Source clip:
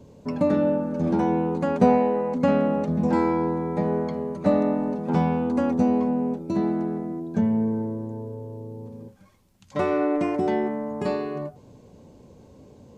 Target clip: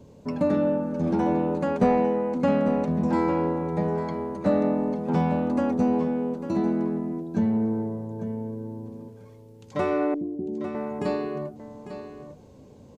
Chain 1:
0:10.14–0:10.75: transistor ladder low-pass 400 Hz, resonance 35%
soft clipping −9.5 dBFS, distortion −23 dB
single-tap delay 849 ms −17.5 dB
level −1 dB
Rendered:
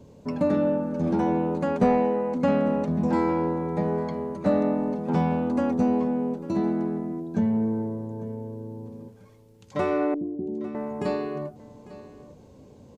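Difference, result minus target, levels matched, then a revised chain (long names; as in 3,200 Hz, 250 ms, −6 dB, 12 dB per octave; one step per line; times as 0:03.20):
echo-to-direct −6.5 dB
0:10.14–0:10.75: transistor ladder low-pass 400 Hz, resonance 35%
soft clipping −9.5 dBFS, distortion −23 dB
single-tap delay 849 ms −11 dB
level −1 dB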